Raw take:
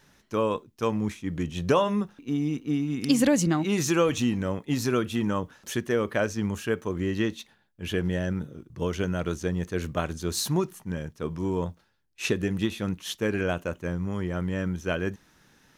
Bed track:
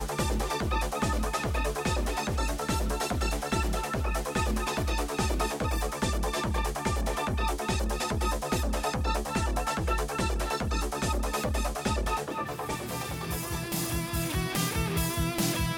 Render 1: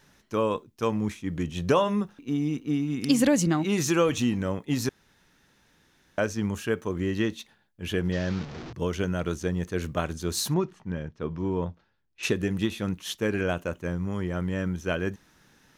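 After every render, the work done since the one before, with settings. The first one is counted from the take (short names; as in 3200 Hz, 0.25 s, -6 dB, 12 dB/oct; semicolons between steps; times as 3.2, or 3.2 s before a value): 4.89–6.18 room tone; 8.12–8.73 delta modulation 32 kbps, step -33.5 dBFS; 10.54–12.23 air absorption 160 m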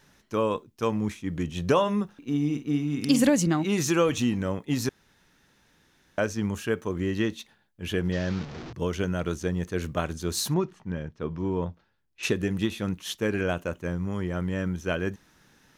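2.17–3.3 doubler 48 ms -10 dB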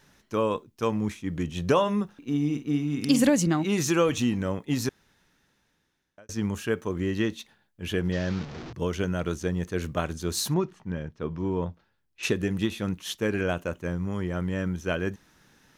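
4.81–6.29 fade out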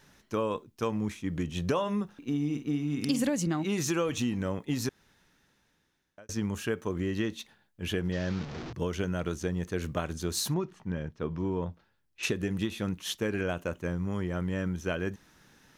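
compressor 2.5:1, threshold -28 dBFS, peak gain reduction 8.5 dB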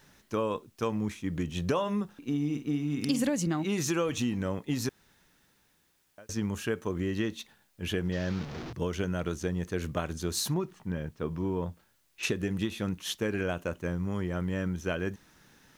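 requantised 12-bit, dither triangular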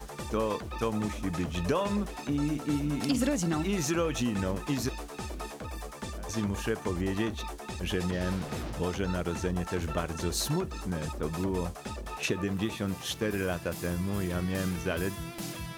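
add bed track -10 dB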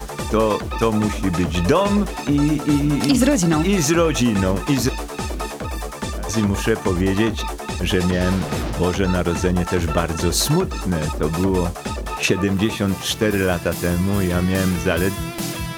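gain +12 dB; limiter -3 dBFS, peak gain reduction 1 dB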